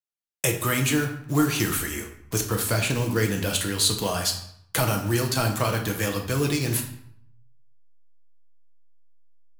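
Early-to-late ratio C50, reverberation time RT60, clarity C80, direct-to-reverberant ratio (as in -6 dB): 8.0 dB, 0.70 s, 11.5 dB, 2.5 dB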